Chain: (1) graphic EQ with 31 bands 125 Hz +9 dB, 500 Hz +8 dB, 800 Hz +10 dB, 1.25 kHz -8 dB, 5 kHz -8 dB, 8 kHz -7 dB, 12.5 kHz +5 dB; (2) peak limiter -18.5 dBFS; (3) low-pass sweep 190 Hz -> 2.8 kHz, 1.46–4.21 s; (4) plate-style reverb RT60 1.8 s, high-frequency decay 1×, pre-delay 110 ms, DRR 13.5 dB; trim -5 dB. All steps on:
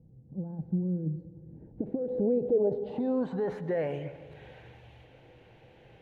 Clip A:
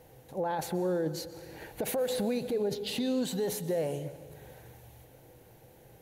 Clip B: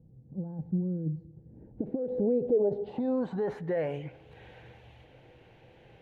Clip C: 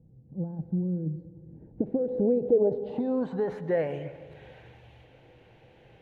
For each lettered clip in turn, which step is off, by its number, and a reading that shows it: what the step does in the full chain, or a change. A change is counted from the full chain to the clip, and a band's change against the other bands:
3, 1 kHz band +8.5 dB; 4, momentary loudness spread change -9 LU; 2, crest factor change +2.0 dB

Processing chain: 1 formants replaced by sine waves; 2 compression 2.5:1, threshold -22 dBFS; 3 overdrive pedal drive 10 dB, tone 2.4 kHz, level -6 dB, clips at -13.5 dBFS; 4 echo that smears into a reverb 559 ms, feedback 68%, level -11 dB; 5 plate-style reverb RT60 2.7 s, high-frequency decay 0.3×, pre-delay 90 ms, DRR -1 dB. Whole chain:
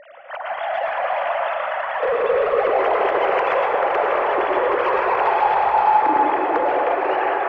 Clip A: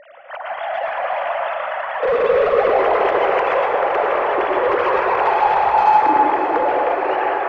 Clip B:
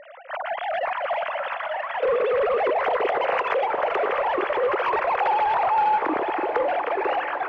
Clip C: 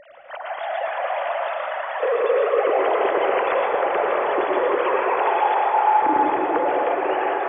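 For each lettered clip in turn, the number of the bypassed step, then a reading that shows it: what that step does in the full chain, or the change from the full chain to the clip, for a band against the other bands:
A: 2, mean gain reduction 1.5 dB; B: 5, loudness change -4.0 LU; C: 3, 250 Hz band +2.5 dB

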